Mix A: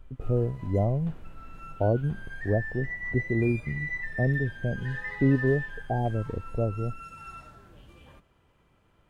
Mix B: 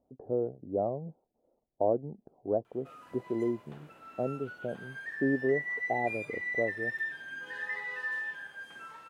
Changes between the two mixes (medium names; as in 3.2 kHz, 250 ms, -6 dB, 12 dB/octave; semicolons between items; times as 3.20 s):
background: entry +2.65 s; master: add high-pass 340 Hz 12 dB/octave